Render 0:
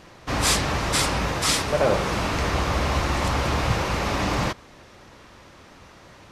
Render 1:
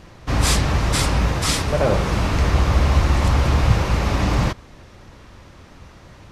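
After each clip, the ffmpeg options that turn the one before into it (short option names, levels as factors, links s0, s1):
-af "lowshelf=f=160:g=12"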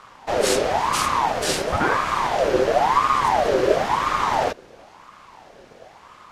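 -af "aeval=exprs='val(0)*sin(2*PI*800*n/s+800*0.45/0.97*sin(2*PI*0.97*n/s))':c=same"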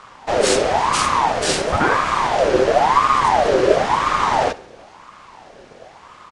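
-af "aecho=1:1:67|134|201|268:0.112|0.0505|0.0227|0.0102,aresample=22050,aresample=44100,volume=1.5"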